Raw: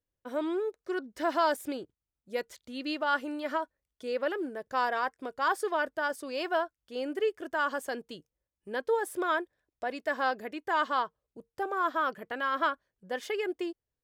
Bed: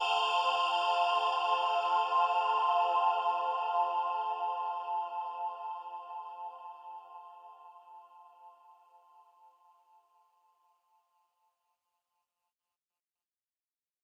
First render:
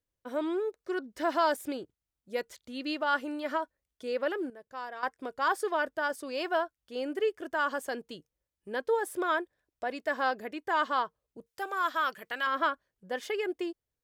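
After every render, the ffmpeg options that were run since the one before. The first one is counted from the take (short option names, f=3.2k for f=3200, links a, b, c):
-filter_complex "[0:a]asettb=1/sr,asplit=3[a][b][c];[a]atrim=end=11.464[d];[b]atrim=start=11.46:end=12.47,asetpts=PTS-STARTPTS,afade=t=in:d=0.004:c=qsin,afade=t=out:st=1.006:d=0.004:c=qsin,tiltshelf=f=1.2k:g=-8[e];[c]atrim=start=12.466[f];[d][e]acrossfade=d=0.004:c1=hsin:c2=qsin[g];[g][f]acrossfade=d=0.004:c1=qsin:c2=hsin,asplit=3[h][i][j];[h]atrim=end=4.502[k];[i]atrim=start=4.498:end=5.032,asetpts=PTS-STARTPTS,volume=-11dB[l];[j]atrim=start=5.028[m];[k][l]acrossfade=d=0.004:c1=hsin:c2=hsin[n];[n][m]acrossfade=d=0.004:c1=hsin:c2=hsin"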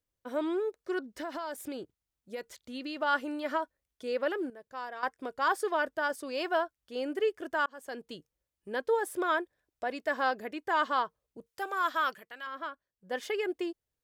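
-filter_complex "[0:a]asettb=1/sr,asplit=3[a][b][c];[a]atrim=end=1.164[d];[b]atrim=start=1.16:end=2.97,asetpts=PTS-STARTPTS,afade=t=in:d=0.004:c=qsin,afade=t=out:st=1.806:d=0.004:c=qsin,acompressor=threshold=-34dB:ratio=5:attack=3.2:release=140:knee=1:detection=peak[e];[c]atrim=start=2.966[f];[d][e]acrossfade=d=0.004:c1=hsin:c2=qsin[g];[g][f]acrossfade=d=0.004:c1=qsin:c2=hsin,asplit=4[h][i][j][k];[h]atrim=end=7.66,asetpts=PTS-STARTPTS,afade=t=out:st=7.656:d=0.004:c=hsin[l];[i]atrim=start=7.66:end=12.26,asetpts=PTS-STARTPTS,afade=t=in:d=0.47,afade=t=out:st=4.45:d=0.15:silence=0.298538[m];[j]atrim=start=12.26:end=12.99,asetpts=PTS-STARTPTS,volume=-10.5dB[n];[k]atrim=start=12.99,asetpts=PTS-STARTPTS,afade=t=in:d=0.15:silence=0.298538[o];[l][m][n][o]concat=n=4:v=0:a=1"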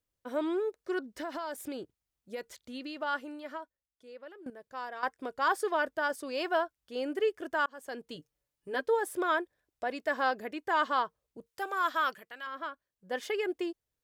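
-filter_complex "[0:a]asettb=1/sr,asplit=3[a][b][c];[a]atrim=end=8.154[d];[b]atrim=start=8.15:end=8.86,asetpts=PTS-STARTPTS,afade=t=in:d=0.004:c=qsin,afade=t=out:st=0.706:d=0.004:c=qsin,aecho=1:1:6.9:0.65,atrim=end_sample=31311[e];[c]atrim=start=8.856[f];[d][e]acrossfade=d=0.004:c1=hsin:c2=qsin[g];[g][f]acrossfade=d=0.004:c1=qsin:c2=hsin,asplit=2[h][i];[h]atrim=end=4.46,asetpts=PTS-STARTPTS,afade=t=out:st=2.6:d=1.86:c=qua:silence=0.125893[j];[i]atrim=start=4.46,asetpts=PTS-STARTPTS,afade=t=in:d=0.004:c=hsin:silence=0.125893[k];[j][k]concat=n=2:v=0:a=1"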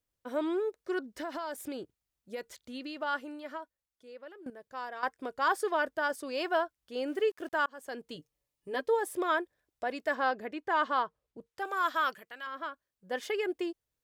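-filter_complex "[0:a]asettb=1/sr,asplit=3[a][b][c];[a]atrim=end=7.074[d];[b]atrim=start=7.07:end=7.66,asetpts=PTS-STARTPTS,afade=t=in:d=0.004:c=qsin,afade=t=out:st=0.586:d=0.004:c=qsin,aeval=exprs='val(0)*gte(abs(val(0)),0.002)':c=same[e];[c]atrim=start=7.656[f];[d][e]acrossfade=d=0.004:c1=hsin:c2=qsin[g];[g][f]acrossfade=d=0.004:c1=qsin:c2=hsin,asettb=1/sr,asplit=3[h][i][j];[h]atrim=end=8.164[k];[i]atrim=start=8.16:end=9.3,asetpts=PTS-STARTPTS,afade=t=in:d=0.004:c=qsin,afade=t=out:st=1.136:d=0.004:c=qsin,bandreject=f=1.5k:w=6.1[l];[j]atrim=start=9.296[m];[k][l]acrossfade=d=0.004:c1=hsin:c2=qsin[n];[n][m]acrossfade=d=0.004:c1=qsin:c2=hsin,asettb=1/sr,asplit=3[o][p][q];[o]atrim=end=10.154[r];[p]atrim=start=10.15:end=11.65,asetpts=PTS-STARTPTS,afade=t=in:d=0.004:c=qsin,afade=t=out:st=1.496:d=0.004:c=qsin,lowpass=f=3.8k:p=1[s];[q]atrim=start=11.646[t];[r][s]acrossfade=d=0.004:c1=hsin:c2=qsin[u];[u][t]acrossfade=d=0.004:c1=qsin:c2=hsin"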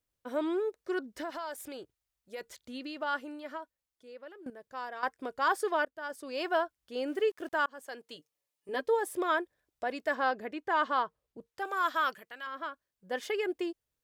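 -filter_complex "[0:a]asettb=1/sr,asplit=3[a][b][c];[a]atrim=end=1.304[d];[b]atrim=start=1.3:end=2.41,asetpts=PTS-STARTPTS,afade=t=in:d=0.004:c=qsin,afade=t=out:st=1.106:d=0.004:c=qsin,equalizer=f=210:t=o:w=1.7:g=-8.5[e];[c]atrim=start=2.406[f];[d][e]acrossfade=d=0.004:c1=hsin:c2=qsin[g];[g][f]acrossfade=d=0.004:c1=qsin:c2=hsin,asettb=1/sr,asplit=3[h][i][j];[h]atrim=end=7.844[k];[i]atrim=start=7.84:end=8.69,asetpts=PTS-STARTPTS,afade=t=in:d=0.004:c=qsin,afade=t=out:st=0.846:d=0.004:c=qsin,highpass=f=600:p=1[l];[j]atrim=start=8.686[m];[k][l]acrossfade=d=0.004:c1=hsin:c2=qsin[n];[n][m]acrossfade=d=0.004:c1=qsin:c2=hsin,asplit=2[o][p];[o]atrim=end=5.85,asetpts=PTS-STARTPTS,afade=t=out:st=5.846:d=0.004:c=hsin:silence=0.1[q];[p]atrim=start=5.85,asetpts=PTS-STARTPTS,afade=t=in:d=0.64:silence=0.1[r];[q][r]concat=n=2:v=0:a=1"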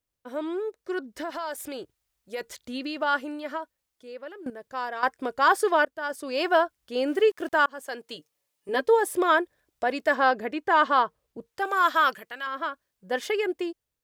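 -af "dynaudnorm=f=510:g=5:m=8dB"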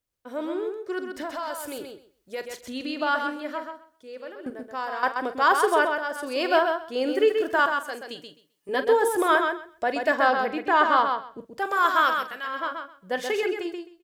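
-filter_complex "[0:a]asplit=2[a][b];[b]adelay=43,volume=-12.5dB[c];[a][c]amix=inputs=2:normalize=0,asplit=2[d][e];[e]aecho=0:1:130|260|390:0.531|0.0849|0.0136[f];[d][f]amix=inputs=2:normalize=0"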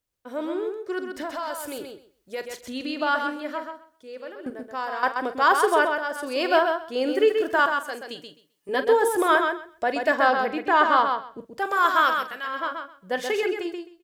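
-af "volume=1dB"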